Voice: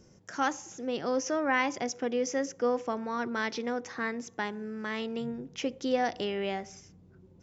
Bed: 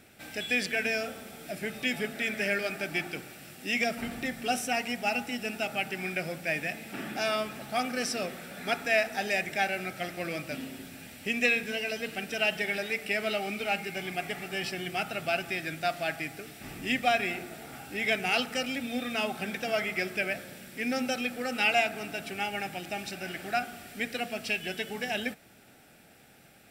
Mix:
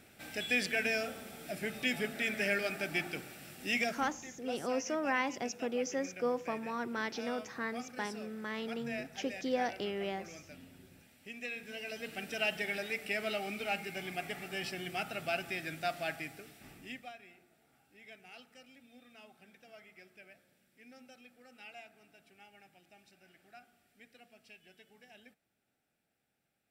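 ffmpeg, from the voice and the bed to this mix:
-filter_complex "[0:a]adelay=3600,volume=0.562[s0];[1:a]volume=2.51,afade=t=out:st=3.74:d=0.42:silence=0.211349,afade=t=in:st=11.49:d=0.78:silence=0.281838,afade=t=out:st=16.08:d=1.06:silence=0.0944061[s1];[s0][s1]amix=inputs=2:normalize=0"

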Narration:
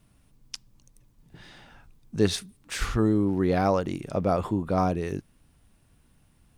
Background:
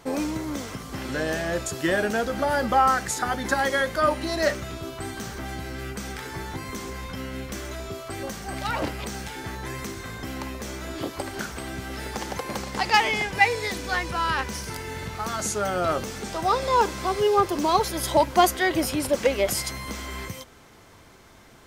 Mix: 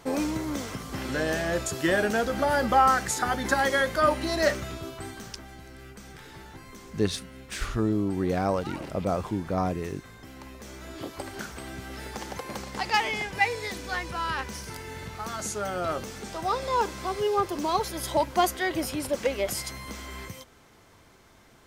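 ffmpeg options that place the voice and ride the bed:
-filter_complex "[0:a]adelay=4800,volume=0.708[s0];[1:a]volume=2.11,afade=t=out:st=4.56:d=0.9:silence=0.266073,afade=t=in:st=10.36:d=0.87:silence=0.446684[s1];[s0][s1]amix=inputs=2:normalize=0"

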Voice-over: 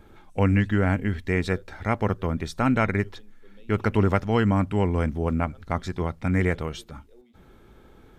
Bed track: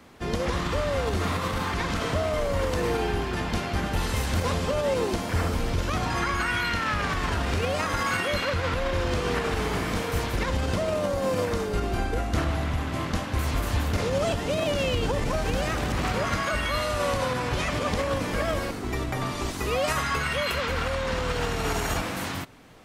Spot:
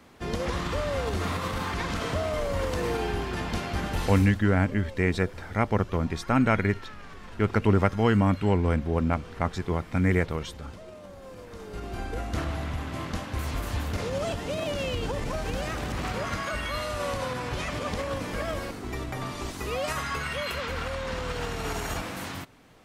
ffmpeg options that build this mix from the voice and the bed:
-filter_complex "[0:a]adelay=3700,volume=0.944[s0];[1:a]volume=3.98,afade=t=out:st=3.99:d=0.39:silence=0.149624,afade=t=in:st=11.46:d=0.79:silence=0.188365[s1];[s0][s1]amix=inputs=2:normalize=0"

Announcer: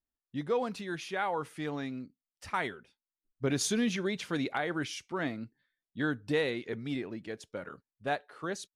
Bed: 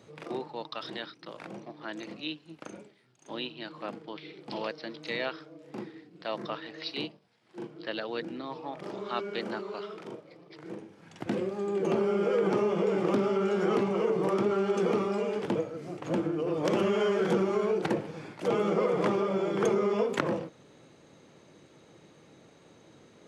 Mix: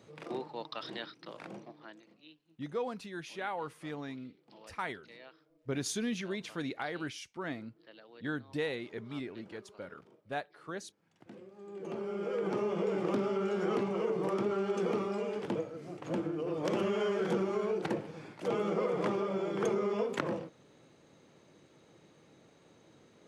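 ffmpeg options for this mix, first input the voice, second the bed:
-filter_complex "[0:a]adelay=2250,volume=0.562[s0];[1:a]volume=4.22,afade=t=out:st=1.51:d=0.51:silence=0.133352,afade=t=in:st=11.52:d=1.26:silence=0.16788[s1];[s0][s1]amix=inputs=2:normalize=0"

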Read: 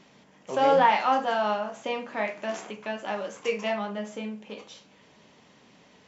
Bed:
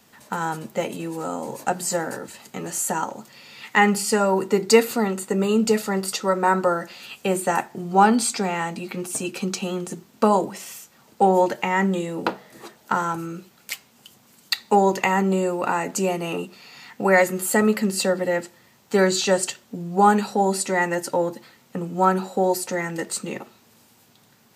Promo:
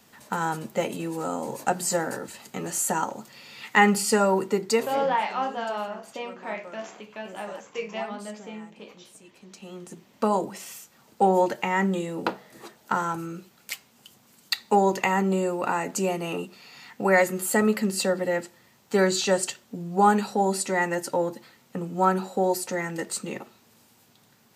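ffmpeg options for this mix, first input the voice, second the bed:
-filter_complex "[0:a]adelay=4300,volume=0.596[s0];[1:a]volume=9.44,afade=t=out:st=4.24:d=0.83:silence=0.0749894,afade=t=in:st=9.46:d=1.17:silence=0.0944061[s1];[s0][s1]amix=inputs=2:normalize=0"

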